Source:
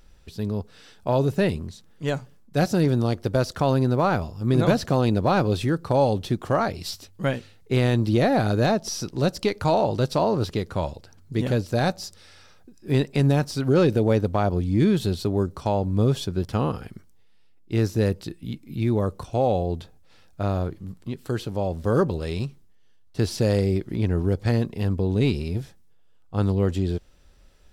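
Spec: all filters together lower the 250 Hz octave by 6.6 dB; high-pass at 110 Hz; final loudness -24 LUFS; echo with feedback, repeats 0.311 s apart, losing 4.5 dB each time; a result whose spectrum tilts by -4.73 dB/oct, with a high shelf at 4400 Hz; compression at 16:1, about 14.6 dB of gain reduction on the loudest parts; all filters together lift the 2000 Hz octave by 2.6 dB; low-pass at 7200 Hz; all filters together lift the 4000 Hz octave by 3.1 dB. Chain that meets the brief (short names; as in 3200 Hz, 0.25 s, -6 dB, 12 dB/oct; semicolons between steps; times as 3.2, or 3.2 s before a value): HPF 110 Hz; LPF 7200 Hz; bell 250 Hz -9 dB; bell 2000 Hz +3.5 dB; bell 4000 Hz +7.5 dB; high shelf 4400 Hz -8.5 dB; compressor 16:1, threshold -32 dBFS; feedback echo 0.311 s, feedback 60%, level -4.5 dB; gain +13 dB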